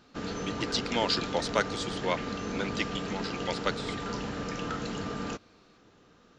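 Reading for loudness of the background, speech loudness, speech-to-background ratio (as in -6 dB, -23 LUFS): -35.5 LUFS, -33.0 LUFS, 2.5 dB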